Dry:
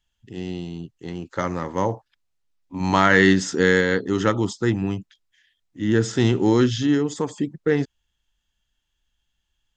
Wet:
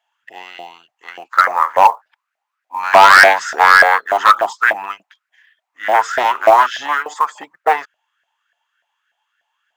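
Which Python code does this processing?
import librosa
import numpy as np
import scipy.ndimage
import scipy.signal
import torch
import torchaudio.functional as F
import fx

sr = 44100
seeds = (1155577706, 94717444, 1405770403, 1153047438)

y = np.minimum(x, 2.0 * 10.0 ** (-15.5 / 20.0) - x)
y = fx.band_shelf(y, sr, hz=1200.0, db=9.0, octaves=2.7)
y = fx.filter_lfo_highpass(y, sr, shape='saw_up', hz=3.4, low_hz=640.0, high_hz=1700.0, q=7.3)
y = fx.quant_float(y, sr, bits=4)
y = y * librosa.db_to_amplitude(-1.0)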